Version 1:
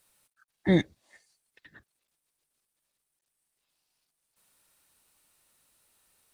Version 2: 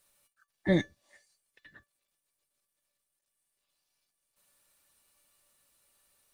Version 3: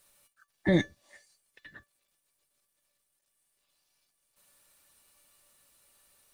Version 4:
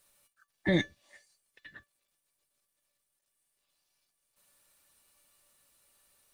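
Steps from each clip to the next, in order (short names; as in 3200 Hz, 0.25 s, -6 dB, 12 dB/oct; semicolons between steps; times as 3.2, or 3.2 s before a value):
resonator 580 Hz, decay 0.17 s, harmonics all, mix 80%; gain +9 dB
limiter -19.5 dBFS, peak gain reduction 5.5 dB; gain +5 dB
dynamic EQ 2800 Hz, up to +7 dB, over -58 dBFS, Q 1.1; gain -3 dB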